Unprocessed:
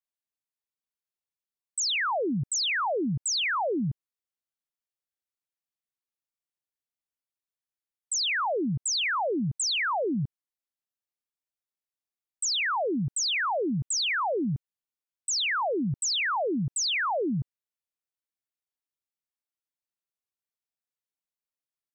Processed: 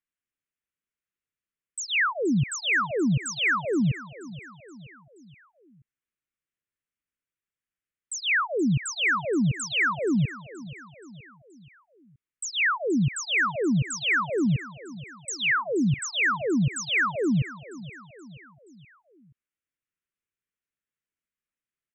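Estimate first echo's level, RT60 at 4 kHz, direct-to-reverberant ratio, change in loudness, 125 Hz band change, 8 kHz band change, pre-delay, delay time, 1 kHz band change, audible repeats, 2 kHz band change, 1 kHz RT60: −17.0 dB, no reverb audible, no reverb audible, +2.0 dB, +6.0 dB, −4.5 dB, no reverb audible, 476 ms, −1.0 dB, 4, +5.5 dB, no reverb audible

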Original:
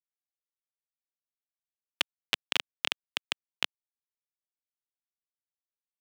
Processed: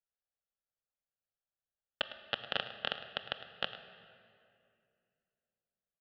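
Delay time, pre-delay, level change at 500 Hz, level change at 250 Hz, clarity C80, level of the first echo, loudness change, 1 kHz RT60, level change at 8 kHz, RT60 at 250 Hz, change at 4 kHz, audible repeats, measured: 106 ms, 4 ms, +4.0 dB, −3.5 dB, 10.0 dB, −15.0 dB, −6.0 dB, 2.3 s, below −25 dB, 3.1 s, −6.5 dB, 1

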